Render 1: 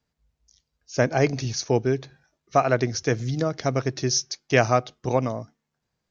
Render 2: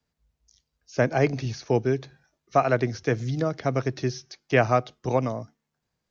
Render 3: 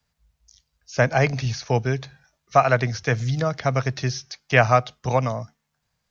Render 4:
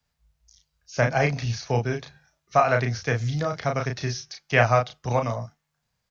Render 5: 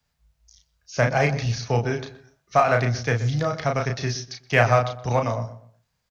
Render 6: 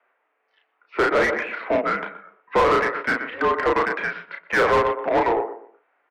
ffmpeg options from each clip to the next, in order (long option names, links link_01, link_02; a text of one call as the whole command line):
ffmpeg -i in.wav -filter_complex "[0:a]acrossover=split=4200[link_01][link_02];[link_02]acompressor=threshold=-47dB:ratio=4:attack=1:release=60[link_03];[link_01][link_03]amix=inputs=2:normalize=0,acrossover=split=160|840|3300[link_04][link_05][link_06][link_07];[link_07]alimiter=level_in=7.5dB:limit=-24dB:level=0:latency=1:release=151,volume=-7.5dB[link_08];[link_04][link_05][link_06][link_08]amix=inputs=4:normalize=0,volume=-1dB" out.wav
ffmpeg -i in.wav -af "equalizer=frequency=330:width_type=o:width=1.1:gain=-13.5,volume=7dB" out.wav
ffmpeg -i in.wav -filter_complex "[0:a]asplit=2[link_01][link_02];[link_02]adelay=34,volume=-4.5dB[link_03];[link_01][link_03]amix=inputs=2:normalize=0,volume=-3.5dB" out.wav
ffmpeg -i in.wav -filter_complex "[0:a]asplit=2[link_01][link_02];[link_02]adelay=123,lowpass=frequency=1400:poles=1,volume=-13dB,asplit=2[link_03][link_04];[link_04]adelay=123,lowpass=frequency=1400:poles=1,volume=0.31,asplit=2[link_05][link_06];[link_06]adelay=123,lowpass=frequency=1400:poles=1,volume=0.31[link_07];[link_01][link_03][link_05][link_07]amix=inputs=4:normalize=0,asplit=2[link_08][link_09];[link_09]asoftclip=type=hard:threshold=-22.5dB,volume=-10dB[link_10];[link_08][link_10]amix=inputs=2:normalize=0" out.wav
ffmpeg -i in.wav -filter_complex "[0:a]highpass=frequency=580:width_type=q:width=0.5412,highpass=frequency=580:width_type=q:width=1.307,lowpass=frequency=2600:width_type=q:width=0.5176,lowpass=frequency=2600:width_type=q:width=0.7071,lowpass=frequency=2600:width_type=q:width=1.932,afreqshift=-210,asplit=2[link_01][link_02];[link_02]highpass=frequency=720:poles=1,volume=27dB,asoftclip=type=tanh:threshold=-6.5dB[link_03];[link_01][link_03]amix=inputs=2:normalize=0,lowpass=frequency=1600:poles=1,volume=-6dB,volume=-3dB" out.wav